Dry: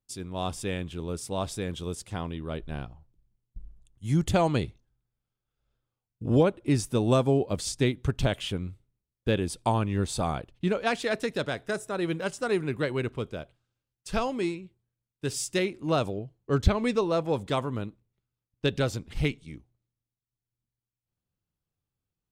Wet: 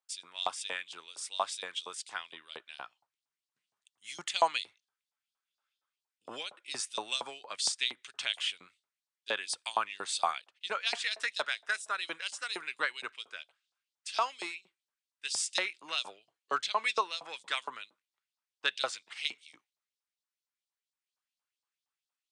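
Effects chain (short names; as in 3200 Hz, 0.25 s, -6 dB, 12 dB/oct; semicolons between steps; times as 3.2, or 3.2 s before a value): LFO high-pass saw up 4.3 Hz 810–4900 Hz; Chebyshev band-pass 100–9300 Hz, order 4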